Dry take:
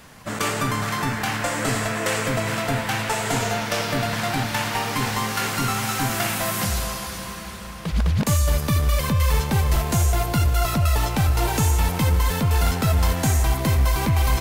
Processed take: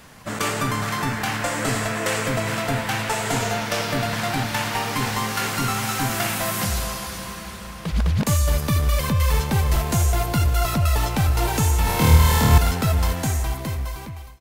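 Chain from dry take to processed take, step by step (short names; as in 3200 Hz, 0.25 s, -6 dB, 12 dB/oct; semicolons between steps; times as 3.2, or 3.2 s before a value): ending faded out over 1.60 s; 11.84–12.58 flutter echo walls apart 4.4 m, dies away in 1.3 s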